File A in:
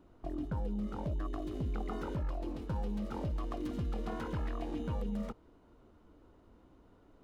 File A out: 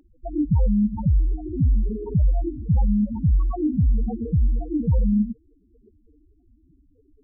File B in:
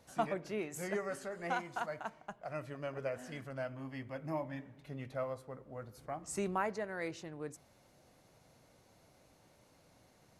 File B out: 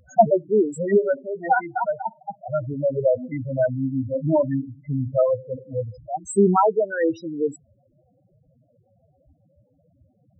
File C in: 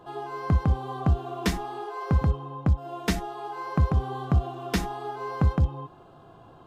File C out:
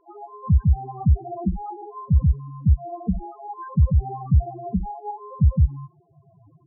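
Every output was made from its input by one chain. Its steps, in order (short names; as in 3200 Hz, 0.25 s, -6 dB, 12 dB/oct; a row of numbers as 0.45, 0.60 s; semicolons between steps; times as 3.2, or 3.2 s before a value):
loudest bins only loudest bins 4; spectral noise reduction 11 dB; match loudness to -23 LUFS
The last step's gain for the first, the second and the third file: +18.0, +21.5, +5.5 dB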